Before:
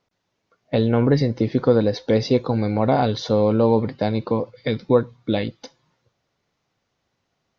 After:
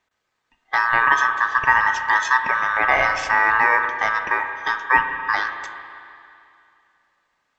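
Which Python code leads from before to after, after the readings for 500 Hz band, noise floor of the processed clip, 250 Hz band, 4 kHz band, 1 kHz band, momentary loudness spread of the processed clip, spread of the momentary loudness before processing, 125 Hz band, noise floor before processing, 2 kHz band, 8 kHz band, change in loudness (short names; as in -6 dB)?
-13.0 dB, -75 dBFS, -21.5 dB, -0.5 dB, +10.0 dB, 8 LU, 7 LU, -22.5 dB, -75 dBFS, +21.0 dB, n/a, +2.0 dB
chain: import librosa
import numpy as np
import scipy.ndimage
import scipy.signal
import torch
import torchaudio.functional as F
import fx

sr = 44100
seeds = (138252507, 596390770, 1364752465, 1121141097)

y = scipy.signal.sosfilt(scipy.signal.butter(2, 44.0, 'highpass', fs=sr, output='sos'), x)
y = fx.notch(y, sr, hz=3700.0, q=16.0)
y = fx.quant_float(y, sr, bits=6)
y = y * np.sin(2.0 * np.pi * 1400.0 * np.arange(len(y)) / sr)
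y = fx.rev_spring(y, sr, rt60_s=2.6, pass_ms=(33, 55), chirp_ms=20, drr_db=6.5)
y = F.gain(torch.from_numpy(y), 2.5).numpy()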